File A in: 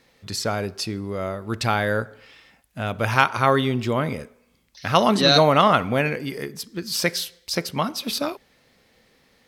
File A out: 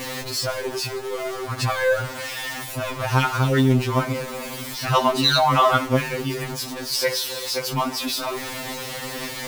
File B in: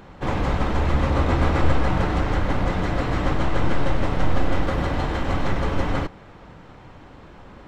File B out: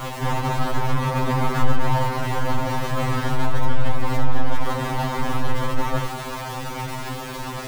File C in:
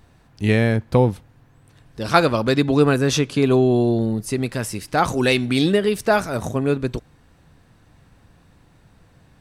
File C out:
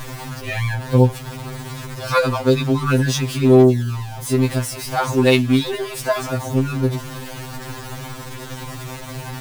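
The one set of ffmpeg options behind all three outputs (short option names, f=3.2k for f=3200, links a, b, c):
-af "aeval=exprs='val(0)+0.5*0.075*sgn(val(0))':c=same,equalizer=f=950:t=o:w=0.41:g=4.5,afftfilt=real='re*2.45*eq(mod(b,6),0)':imag='im*2.45*eq(mod(b,6),0)':win_size=2048:overlap=0.75,volume=-1dB"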